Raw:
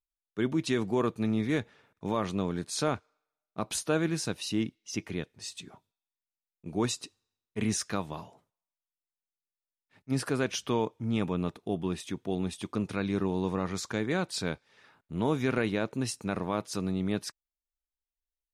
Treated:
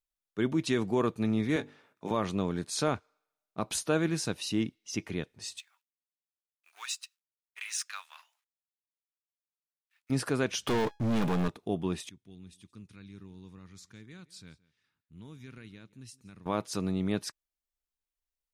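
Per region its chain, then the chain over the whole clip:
1.56–2.11 s: high-pass 190 Hz + hum notches 50/100/150/200/250/300/350/400/450 Hz + doubling 19 ms -8.5 dB
5.59–10.10 s: companding laws mixed up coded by A + high-pass 1.3 kHz 24 dB/octave + peaking EQ 2.6 kHz +4.5 dB 0.26 oct
10.67–11.48 s: waveshaping leveller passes 5 + feedback comb 830 Hz, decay 0.31 s
12.09–16.46 s: amplifier tone stack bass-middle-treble 6-0-2 + delay 170 ms -21.5 dB
whole clip: none

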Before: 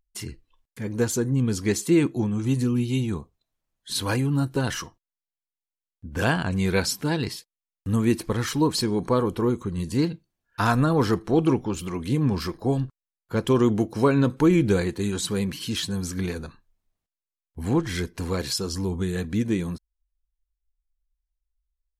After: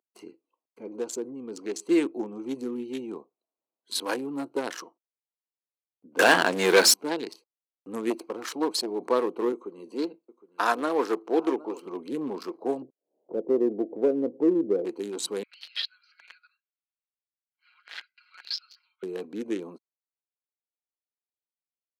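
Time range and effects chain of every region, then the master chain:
0.83–1.89 s: low-pass 9.6 kHz + compression 2:1, threshold -26 dBFS
6.19–6.94 s: hum notches 50/100/150/200/250/300/350 Hz + waveshaping leveller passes 3
8.10–9.02 s: bass shelf 220 Hz -3.5 dB + transformer saturation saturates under 490 Hz
9.52–11.86 s: high-pass 260 Hz + delay 763 ms -18 dB
12.82–14.85 s: steep low-pass 660 Hz + upward compressor, threshold -23 dBFS
15.43–19.03 s: Chebyshev band-pass 1.4–5 kHz, order 5 + comb 5.5 ms, depth 93%
whole clip: local Wiener filter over 25 samples; high-pass 320 Hz 24 dB/octave

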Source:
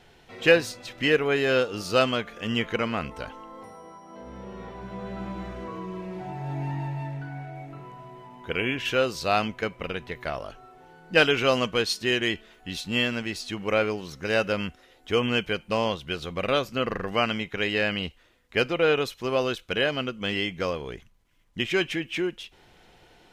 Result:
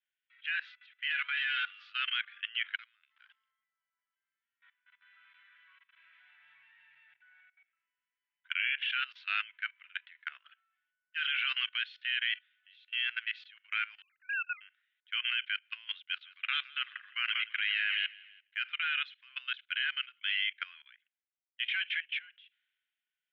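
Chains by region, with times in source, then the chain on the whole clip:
1.10–1.90 s: power-law waveshaper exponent 0.7 + comb 4.1 ms, depth 55%
2.75–3.51 s: treble shelf 8.5 kHz +3.5 dB + compression 16:1, threshold -37 dBFS + sample-rate reducer 6.2 kHz
4.13–7.41 s: treble shelf 7.8 kHz +9.5 dB + delay 873 ms -5.5 dB
14.02–14.61 s: formants replaced by sine waves + high-pass 800 Hz
16.02–18.68 s: feedback delay 166 ms, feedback 43%, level -8.5 dB + gate with hold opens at -37 dBFS, closes at -42 dBFS + brick-wall FIR high-pass 610 Hz
whole clip: elliptic band-pass 1.5–3.4 kHz, stop band 60 dB; level held to a coarse grid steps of 18 dB; three bands expanded up and down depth 70%; trim +3.5 dB

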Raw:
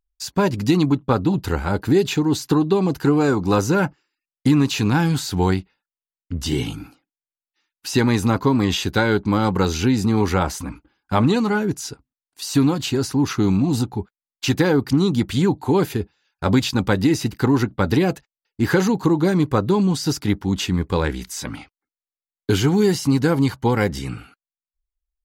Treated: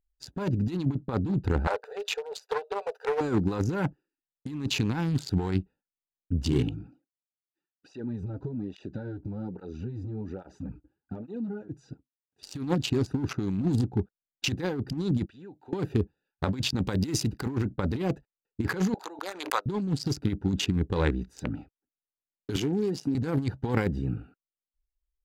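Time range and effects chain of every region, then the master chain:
1.67–3.21 s: brick-wall FIR high-pass 420 Hz + loudspeaker Doppler distortion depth 0.17 ms
6.69–12.43 s: Chebyshev low-pass 6.9 kHz + compression, threshold -27 dBFS + cancelling through-zero flanger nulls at 1.2 Hz, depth 5.3 ms
15.26–15.73 s: band-pass filter 3 kHz, Q 0.7 + compression 4:1, threshold -37 dBFS
16.83–17.49 s: tone controls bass 0 dB, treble +6 dB + modulation noise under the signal 34 dB + tape noise reduction on one side only encoder only
18.94–19.66 s: Bessel high-pass 990 Hz, order 4 + tilt EQ +1.5 dB/octave + swell ahead of each attack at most 43 dB/s
22.56–23.15 s: high-pass 220 Hz + compression 12:1, threshold -21 dBFS
whole clip: local Wiener filter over 41 samples; treble shelf 11 kHz -5 dB; compressor with a negative ratio -21 dBFS, ratio -0.5; trim -4 dB

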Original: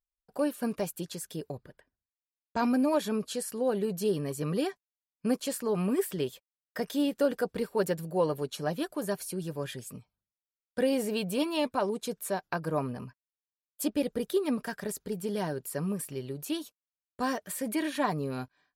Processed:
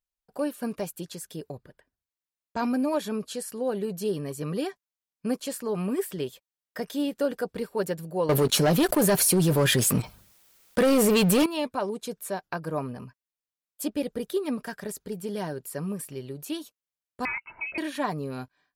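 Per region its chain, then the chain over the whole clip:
8.29–11.46 s: treble shelf 11 kHz +3.5 dB + waveshaping leveller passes 3 + level flattener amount 70%
17.25–17.78 s: comb 1.5 ms, depth 58% + frequency inversion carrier 2.8 kHz
whole clip: none

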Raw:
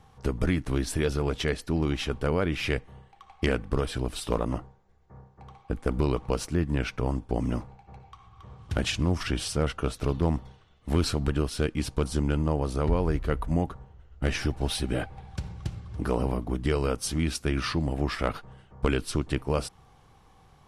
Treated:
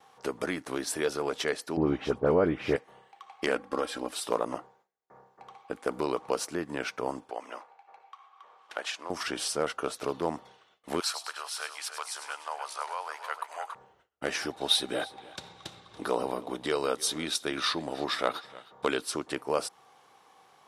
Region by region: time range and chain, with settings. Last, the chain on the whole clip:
1.77–2.76 s: tilt EQ -4.5 dB/octave + phase dispersion highs, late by 67 ms, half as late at 3 kHz
3.55–4.12 s: treble shelf 4.5 kHz -5 dB + comb 3.7 ms, depth 59%
7.30–9.10 s: high-pass 720 Hz + treble shelf 3.8 kHz -10.5 dB
11.00–13.75 s: high-pass 810 Hz 24 dB/octave + two-band feedback delay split 3 kHz, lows 301 ms, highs 101 ms, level -9 dB
14.51–19.02 s: peaking EQ 3.7 kHz +13.5 dB 0.22 oct + delay 312 ms -20.5 dB
whole clip: dynamic bell 2.7 kHz, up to -5 dB, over -47 dBFS, Q 1.3; high-pass 450 Hz 12 dB/octave; gate with hold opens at -57 dBFS; trim +2.5 dB

